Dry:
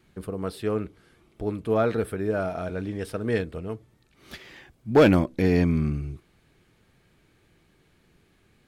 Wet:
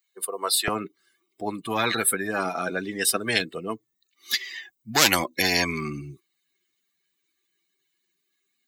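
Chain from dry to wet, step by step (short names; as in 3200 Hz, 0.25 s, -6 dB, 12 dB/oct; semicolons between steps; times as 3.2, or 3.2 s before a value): per-bin expansion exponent 2; HPF 530 Hz 24 dB/oct, from 0.68 s 250 Hz; spectral compressor 10:1; gain +5.5 dB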